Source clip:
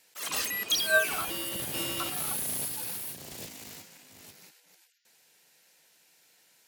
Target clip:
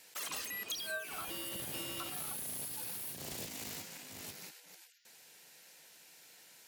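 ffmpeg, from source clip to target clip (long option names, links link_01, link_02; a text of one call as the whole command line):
ffmpeg -i in.wav -af "acompressor=threshold=-44dB:ratio=6,volume=4.5dB" out.wav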